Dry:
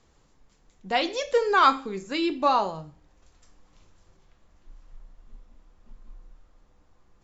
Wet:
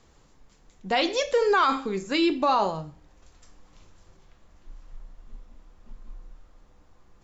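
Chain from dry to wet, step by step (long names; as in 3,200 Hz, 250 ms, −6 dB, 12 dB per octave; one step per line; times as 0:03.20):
brickwall limiter −17 dBFS, peak gain reduction 11 dB
level +4 dB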